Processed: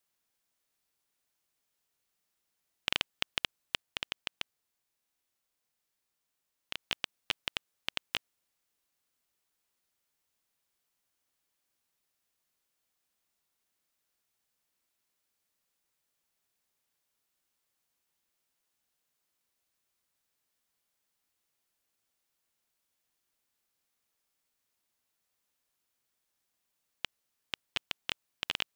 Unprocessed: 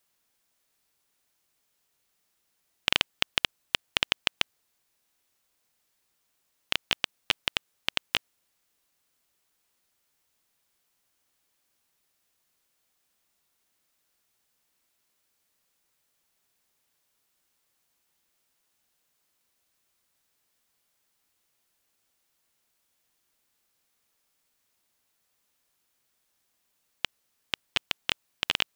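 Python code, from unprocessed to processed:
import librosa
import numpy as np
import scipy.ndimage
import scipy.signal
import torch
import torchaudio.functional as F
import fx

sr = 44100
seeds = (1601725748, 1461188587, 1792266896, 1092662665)

y = fx.hpss(x, sr, part='percussive', gain_db=-5, at=(3.82, 6.81))
y = F.gain(torch.from_numpy(y), -7.0).numpy()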